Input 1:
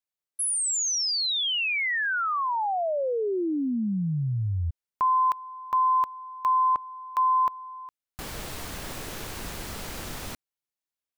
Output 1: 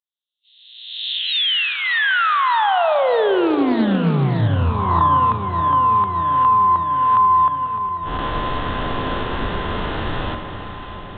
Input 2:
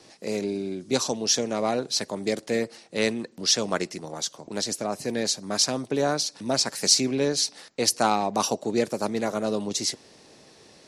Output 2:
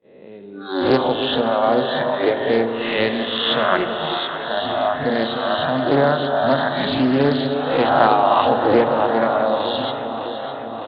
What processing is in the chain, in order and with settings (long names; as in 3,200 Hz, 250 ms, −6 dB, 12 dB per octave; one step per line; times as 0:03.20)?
peak hold with a rise ahead of every peak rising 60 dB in 1.13 s
noise gate −39 dBFS, range −21 dB
noise reduction from a noise print of the clip's start 24 dB
high-frequency loss of the air 55 metres
downsampling to 8,000 Hz
mains-hum notches 60/120/180/240/300 Hz
in parallel at +2.5 dB: downward compressor, threshold −34 dBFS
on the sum: parametric band 2,300 Hz −11.5 dB 0.22 octaves
delay that swaps between a low-pass and a high-pass 303 ms, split 900 Hz, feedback 84%, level −9.5 dB
spring reverb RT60 3.4 s, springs 35 ms, chirp 70 ms, DRR 7.5 dB
highs frequency-modulated by the lows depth 0.22 ms
level +5 dB